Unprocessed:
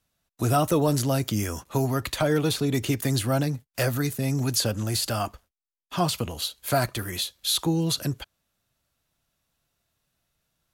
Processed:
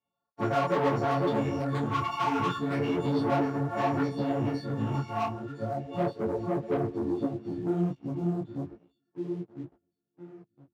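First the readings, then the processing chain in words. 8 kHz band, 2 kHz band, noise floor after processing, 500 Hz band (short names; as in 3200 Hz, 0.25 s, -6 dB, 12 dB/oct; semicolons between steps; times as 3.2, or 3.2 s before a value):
under -20 dB, -4.5 dB, -85 dBFS, -1.5 dB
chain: frequency quantiser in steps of 4 st; LPF 6100 Hz; high shelf 2200 Hz +6.5 dB; compressor 12:1, threshold -20 dBFS, peak gain reduction 13.5 dB; echo with dull and thin repeats by turns 0.504 s, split 1500 Hz, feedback 50%, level -2.5 dB; low-pass sweep 1100 Hz -> 310 Hz, 4.29–7.44; hard clip -19 dBFS, distortion -16 dB; dynamic EQ 1400 Hz, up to -3 dB, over -42 dBFS, Q 1.5; phaser stages 8, 0.34 Hz, lowest notch 520–3700 Hz; sample leveller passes 2; HPF 150 Hz 12 dB/oct; detuned doubles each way 43 cents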